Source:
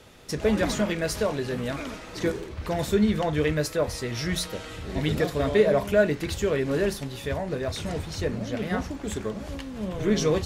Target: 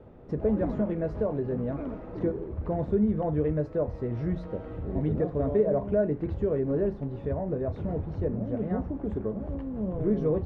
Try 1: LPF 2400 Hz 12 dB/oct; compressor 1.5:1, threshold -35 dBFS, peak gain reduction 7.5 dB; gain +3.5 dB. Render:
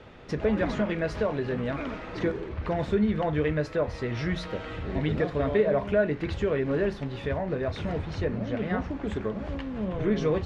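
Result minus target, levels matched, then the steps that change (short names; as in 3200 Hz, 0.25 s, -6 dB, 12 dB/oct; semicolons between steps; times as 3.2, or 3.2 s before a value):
2000 Hz band +14.5 dB
change: LPF 660 Hz 12 dB/oct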